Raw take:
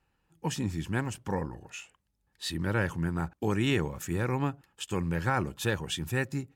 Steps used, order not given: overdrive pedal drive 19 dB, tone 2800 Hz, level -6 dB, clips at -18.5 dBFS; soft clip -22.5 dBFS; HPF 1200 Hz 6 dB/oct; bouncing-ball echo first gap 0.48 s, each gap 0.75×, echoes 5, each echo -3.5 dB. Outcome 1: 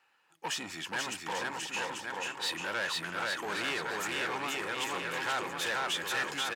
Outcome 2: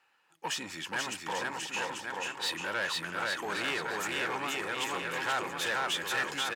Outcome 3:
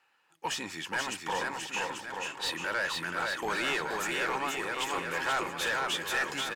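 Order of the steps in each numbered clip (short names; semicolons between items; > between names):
bouncing-ball echo > overdrive pedal > soft clip > HPF; bouncing-ball echo > soft clip > overdrive pedal > HPF; HPF > overdrive pedal > bouncing-ball echo > soft clip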